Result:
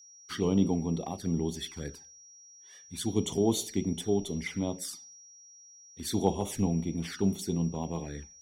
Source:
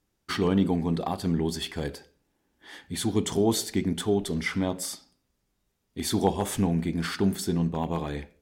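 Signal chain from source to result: envelope flanger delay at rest 2.2 ms, full sweep at -24 dBFS; whine 5700 Hz -44 dBFS; three-band expander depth 40%; gain -3.5 dB

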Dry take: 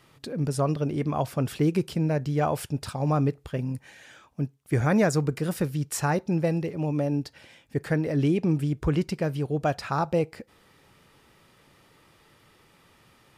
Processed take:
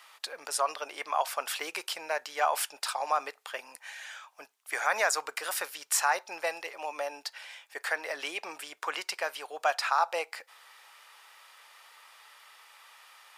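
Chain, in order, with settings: HPF 790 Hz 24 dB/oct; in parallel at +1 dB: limiter -25 dBFS, peak gain reduction 10 dB

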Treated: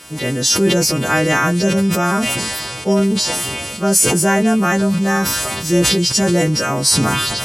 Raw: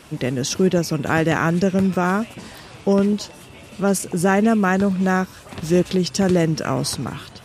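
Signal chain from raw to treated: frequency quantiser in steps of 2 st; sustainer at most 20 dB/s; gain +1.5 dB

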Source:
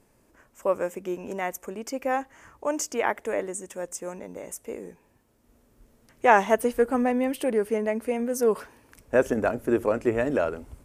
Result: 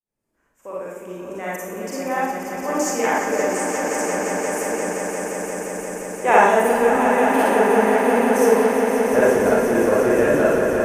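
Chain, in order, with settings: opening faded in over 2.12 s; swelling echo 0.175 s, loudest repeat 5, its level -8 dB; Schroeder reverb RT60 0.72 s, DRR -6 dB; gain -1.5 dB

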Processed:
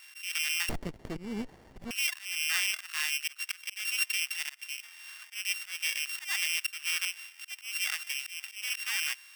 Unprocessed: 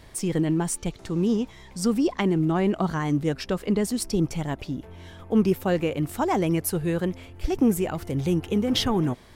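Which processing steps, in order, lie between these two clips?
sample sorter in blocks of 16 samples; HPF 1500 Hz 24 dB/oct; in parallel at +2.5 dB: limiter -18 dBFS, peak gain reduction 10 dB; on the sum: auto swell 0.232 s; 0.69–1.91 running maximum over 33 samples; gain -3.5 dB

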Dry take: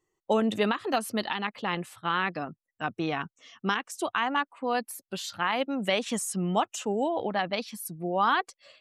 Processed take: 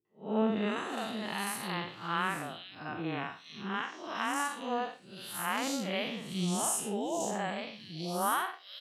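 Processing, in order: time blur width 0.167 s; HPF 110 Hz; high shelf 4300 Hz +8.5 dB; three bands offset in time lows, mids, highs 50/460 ms, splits 410/3400 Hz

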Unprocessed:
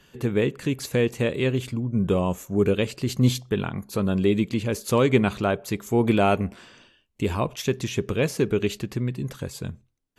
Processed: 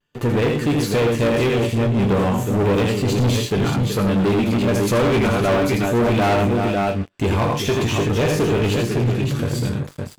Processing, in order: resonator bank G2 minor, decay 0.2 s; tapped delay 81/108/372/561 ms -5.5/-11.5/-12/-7.5 dB; vibrato 0.51 Hz 29 cents; sample leveller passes 5; high shelf 4100 Hz -6 dB; gain +2 dB

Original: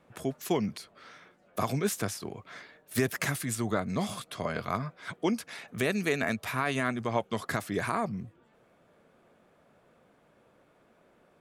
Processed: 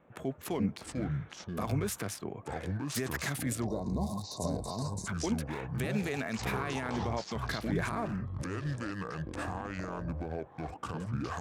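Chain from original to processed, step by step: Wiener smoothing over 9 samples; limiter -24 dBFS, peak gain reduction 9 dB; echoes that change speed 0.237 s, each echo -6 st, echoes 2; spectral gain 3.66–5.07, 1100–3600 Hz -24 dB

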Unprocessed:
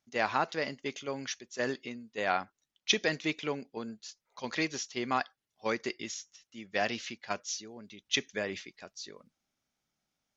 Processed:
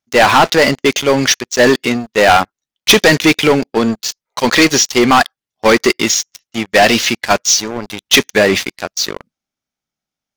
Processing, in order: sample leveller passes 5; gain +8.5 dB

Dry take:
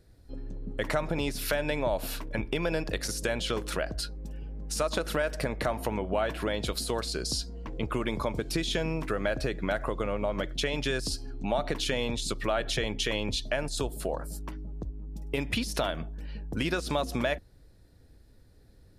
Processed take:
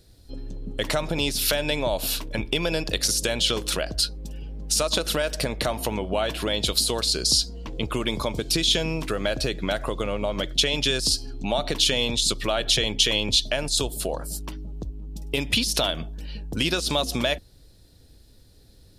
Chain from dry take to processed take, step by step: resonant high shelf 2500 Hz +7.5 dB, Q 1.5; gain +3.5 dB

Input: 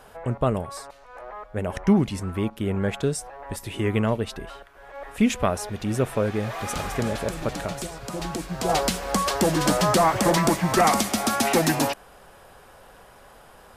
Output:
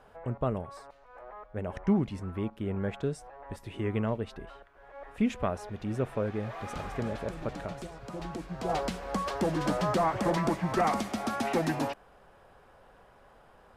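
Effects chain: LPF 2000 Hz 6 dB/oct; gain -7 dB

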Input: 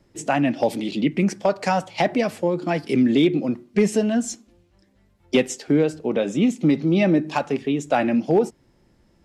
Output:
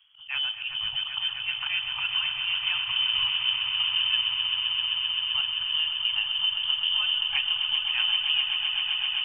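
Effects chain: inverted band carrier 3300 Hz; auto swell 0.106 s; compressor, threshold -22 dBFS, peak gain reduction 9 dB; elliptic band-stop 140–890 Hz, stop band 50 dB; swelling echo 0.13 s, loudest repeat 8, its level -9.5 dB; on a send at -13 dB: reverb RT60 4.1 s, pre-delay 95 ms; on the sum: gain -3 dB

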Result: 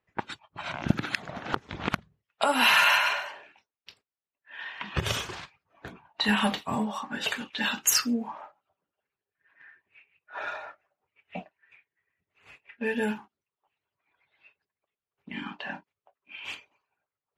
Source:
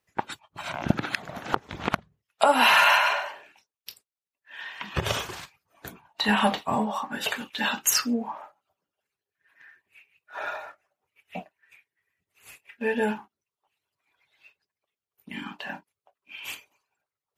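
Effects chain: low-pass opened by the level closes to 2500 Hz, open at -23 dBFS; dynamic EQ 710 Hz, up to -7 dB, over -37 dBFS, Q 0.87

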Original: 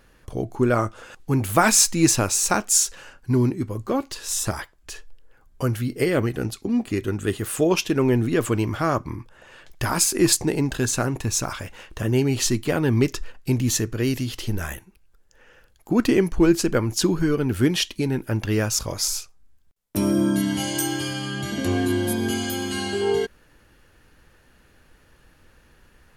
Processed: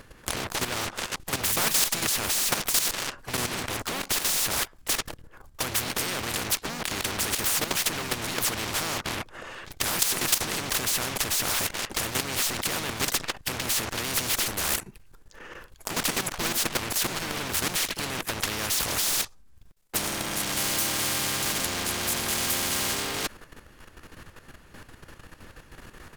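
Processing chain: in parallel at -10 dB: fuzz box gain 43 dB, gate -37 dBFS; on the sum: harmoniser -7 st -7 dB, -5 st -8 dB, +3 st -14 dB; level quantiser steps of 13 dB; spectral compressor 4:1; gain -8.5 dB

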